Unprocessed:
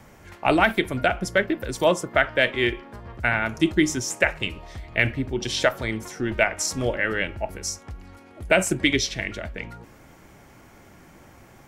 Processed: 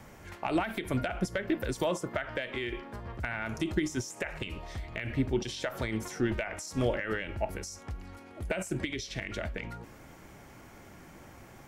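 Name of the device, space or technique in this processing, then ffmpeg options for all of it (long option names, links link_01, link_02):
de-esser from a sidechain: -filter_complex "[0:a]asplit=2[link_01][link_02];[link_02]highpass=frequency=6500:poles=1,apad=whole_len=514885[link_03];[link_01][link_03]sidechaincompress=threshold=-40dB:ratio=8:attack=3.6:release=76,volume=-1.5dB"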